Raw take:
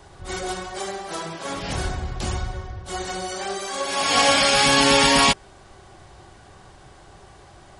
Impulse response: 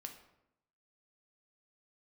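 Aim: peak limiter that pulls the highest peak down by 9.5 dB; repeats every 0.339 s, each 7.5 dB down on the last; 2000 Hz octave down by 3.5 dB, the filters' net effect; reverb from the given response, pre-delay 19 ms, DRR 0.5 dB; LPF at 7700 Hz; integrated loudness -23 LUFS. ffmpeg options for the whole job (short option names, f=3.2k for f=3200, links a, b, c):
-filter_complex "[0:a]lowpass=7.7k,equalizer=f=2k:t=o:g=-4.5,alimiter=limit=-15dB:level=0:latency=1,aecho=1:1:339|678|1017|1356|1695:0.422|0.177|0.0744|0.0312|0.0131,asplit=2[a][b];[1:a]atrim=start_sample=2205,adelay=19[c];[b][c]afir=irnorm=-1:irlink=0,volume=4dB[d];[a][d]amix=inputs=2:normalize=0,volume=0.5dB"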